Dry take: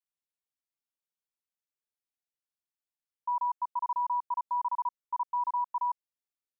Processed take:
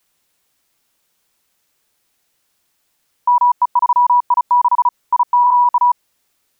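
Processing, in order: 5.24–5.69 flutter echo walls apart 8.3 m, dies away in 0.45 s; maximiser +35.5 dB; gain -7 dB

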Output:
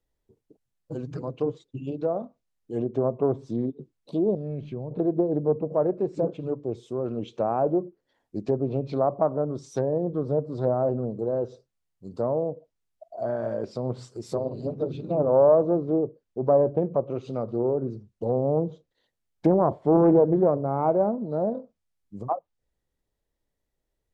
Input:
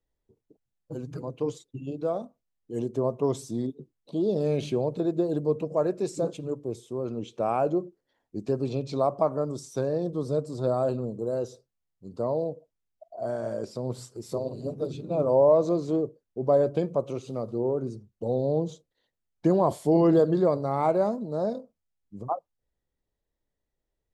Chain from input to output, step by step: treble ducked by the level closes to 860 Hz, closed at -23.5 dBFS; 4.35–4.91 bell 550 Hz -13.5 dB 2.9 oct; Doppler distortion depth 0.27 ms; gain +2.5 dB

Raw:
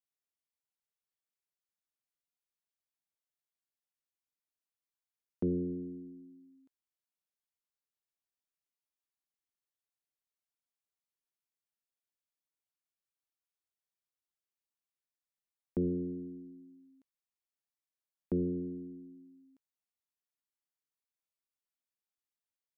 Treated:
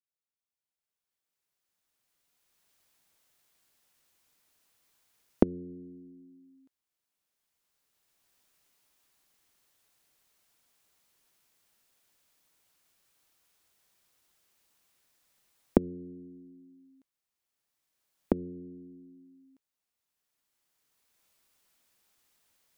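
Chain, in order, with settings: recorder AGC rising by 11 dB/s; gain -8 dB

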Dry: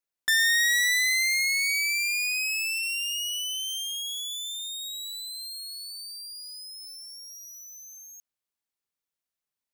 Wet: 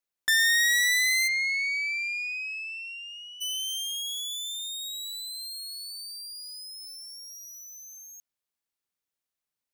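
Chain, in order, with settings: 1.27–3.4 LPF 3400 Hz -> 1500 Hz 12 dB/oct

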